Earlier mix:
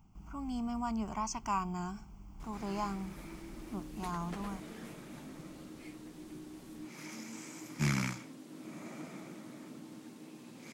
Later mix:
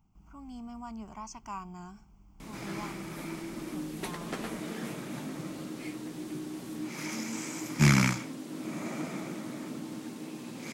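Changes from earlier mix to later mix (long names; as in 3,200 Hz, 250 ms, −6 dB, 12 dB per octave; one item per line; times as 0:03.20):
speech −6.5 dB
background +9.5 dB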